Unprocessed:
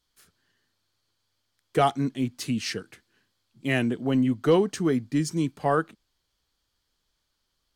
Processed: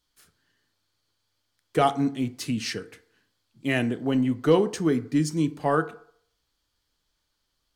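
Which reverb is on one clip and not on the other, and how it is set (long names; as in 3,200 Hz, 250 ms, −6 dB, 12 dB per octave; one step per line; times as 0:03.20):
feedback delay network reverb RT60 0.61 s, low-frequency decay 0.75×, high-frequency decay 0.5×, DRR 11 dB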